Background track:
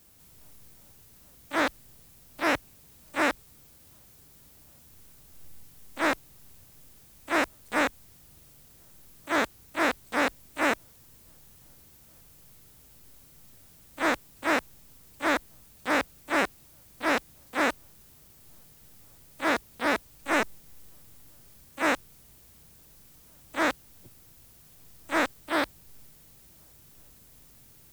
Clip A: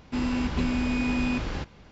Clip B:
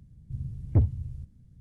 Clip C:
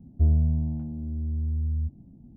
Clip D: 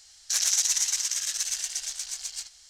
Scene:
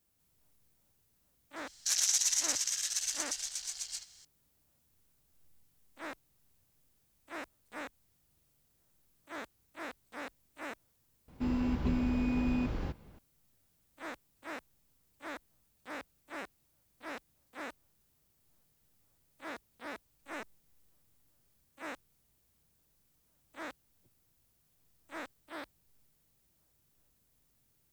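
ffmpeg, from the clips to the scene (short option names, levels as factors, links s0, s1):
-filter_complex "[0:a]volume=0.126[s0];[1:a]tiltshelf=f=1200:g=5[s1];[4:a]atrim=end=2.69,asetpts=PTS-STARTPTS,volume=0.562,afade=t=in:d=0.004:c=hsin,afade=t=out:st=2.686:d=0.004:c=hsin,adelay=1560[s2];[s1]atrim=end=1.91,asetpts=PTS-STARTPTS,volume=0.355,afade=t=in:d=0.004:c=hsin,afade=t=out:st=1.906:d=0.004:c=hsin,adelay=11280[s3];[s0][s2][s3]amix=inputs=3:normalize=0"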